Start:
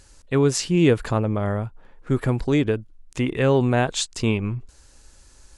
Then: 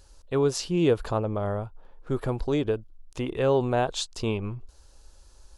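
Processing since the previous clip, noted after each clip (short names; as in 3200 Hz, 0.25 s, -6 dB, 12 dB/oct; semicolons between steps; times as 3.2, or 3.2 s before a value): ten-band EQ 125 Hz -7 dB, 250 Hz -7 dB, 2000 Hz -11 dB, 8000 Hz -9 dB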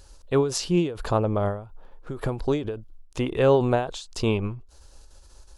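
ending taper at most 110 dB/s; gain +4.5 dB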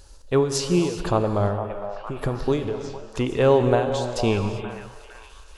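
delay with a stepping band-pass 0.458 s, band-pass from 760 Hz, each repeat 0.7 oct, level -7 dB; non-linear reverb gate 0.42 s flat, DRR 7.5 dB; gain +1.5 dB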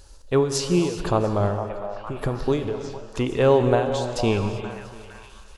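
echo 0.689 s -23.5 dB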